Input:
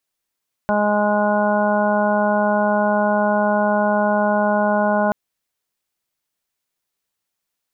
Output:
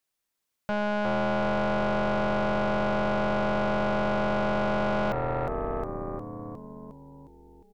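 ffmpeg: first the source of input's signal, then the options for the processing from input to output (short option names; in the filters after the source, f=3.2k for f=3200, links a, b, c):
-f lavfi -i "aevalsrc='0.0944*sin(2*PI*208*t)+0.0335*sin(2*PI*416*t)+0.119*sin(2*PI*624*t)+0.0794*sin(2*PI*832*t)+0.0531*sin(2*PI*1040*t)+0.0112*sin(2*PI*1248*t)+0.0531*sin(2*PI*1456*t)':d=4.43:s=44100"
-filter_complex "[0:a]asplit=2[a][b];[b]asplit=8[c][d][e][f][g][h][i][j];[c]adelay=358,afreqshift=-80,volume=-6.5dB[k];[d]adelay=716,afreqshift=-160,volume=-10.9dB[l];[e]adelay=1074,afreqshift=-240,volume=-15.4dB[m];[f]adelay=1432,afreqshift=-320,volume=-19.8dB[n];[g]adelay=1790,afreqshift=-400,volume=-24.2dB[o];[h]adelay=2148,afreqshift=-480,volume=-28.7dB[p];[i]adelay=2506,afreqshift=-560,volume=-33.1dB[q];[j]adelay=2864,afreqshift=-640,volume=-37.6dB[r];[k][l][m][n][o][p][q][r]amix=inputs=8:normalize=0[s];[a][s]amix=inputs=2:normalize=0,aeval=exprs='(tanh(7.94*val(0)+0.6)-tanh(0.6))/7.94':c=same,alimiter=limit=-19dB:level=0:latency=1:release=68"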